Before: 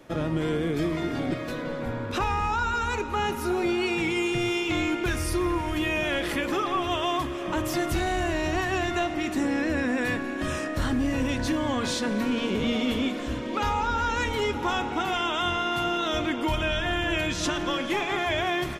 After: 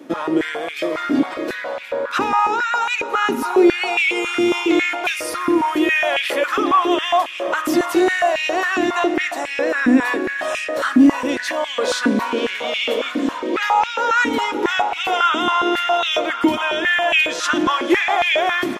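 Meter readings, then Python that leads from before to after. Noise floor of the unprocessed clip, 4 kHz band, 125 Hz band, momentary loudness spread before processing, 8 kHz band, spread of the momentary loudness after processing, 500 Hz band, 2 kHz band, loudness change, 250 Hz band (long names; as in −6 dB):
−32 dBFS, +7.5 dB, −10.0 dB, 3 LU, +5.5 dB, 7 LU, +8.5 dB, +10.0 dB, +8.5 dB, +7.5 dB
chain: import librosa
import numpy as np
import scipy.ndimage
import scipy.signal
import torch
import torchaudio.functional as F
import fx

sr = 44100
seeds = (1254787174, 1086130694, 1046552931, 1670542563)

y = fx.filter_held_highpass(x, sr, hz=7.3, low_hz=270.0, high_hz=2500.0)
y = F.gain(torch.from_numpy(y), 5.0).numpy()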